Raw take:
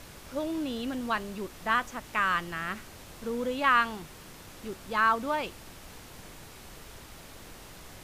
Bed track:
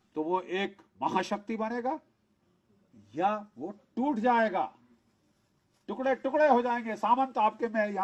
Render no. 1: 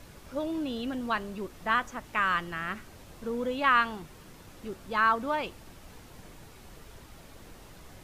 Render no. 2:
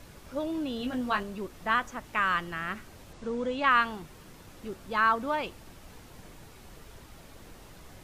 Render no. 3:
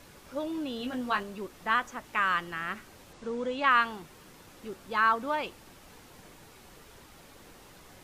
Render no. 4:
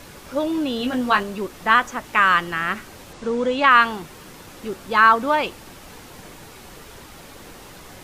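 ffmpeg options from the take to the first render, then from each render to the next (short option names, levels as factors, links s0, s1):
-af "afftdn=nr=6:nf=-48"
-filter_complex "[0:a]asettb=1/sr,asplit=3[s0][s1][s2];[s0]atrim=end=0.794[s3];[s1]atrim=start=0.79:end=1.23,asetpts=PTS-STARTPTS,afade=t=in:d=0.004:c=qsin,afade=t=out:st=0.436:d=0.004:c=qsin,asplit=2[s4][s5];[s5]adelay=20,volume=0.562[s6];[s4][s6]amix=inputs=2:normalize=0,atrim=end_sample=19404[s7];[s2]atrim=start=1.226[s8];[s3][s7]acrossfade=d=0.004:c1=hsin:c2=qsin[s9];[s9][s8]acrossfade=d=0.004:c1=qsin:c2=hsin,asettb=1/sr,asplit=3[s10][s11][s12];[s10]atrim=end=3.134[s13];[s11]atrim=start=3.13:end=3.71,asetpts=PTS-STARTPTS,afade=t=in:d=0.004:c=qsin,afade=t=out:st=0.576:d=0.004:c=qsin,lowpass=f=8400:w=0.5412,lowpass=f=8400:w=1.3066[s14];[s12]atrim=start=3.706[s15];[s13][s14]acrossfade=d=0.004:c1=hsin:c2=qsin[s16];[s16][s15]acrossfade=d=0.004:c1=qsin:c2=hsin"
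-af "lowshelf=f=150:g=-9.5,bandreject=f=650:w=19"
-af "volume=3.55,alimiter=limit=0.708:level=0:latency=1"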